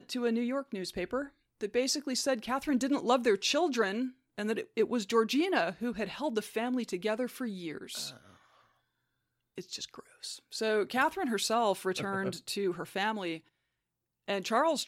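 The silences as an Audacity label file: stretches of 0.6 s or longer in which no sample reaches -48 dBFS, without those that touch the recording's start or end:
8.340000	9.580000	silence
13.390000	14.280000	silence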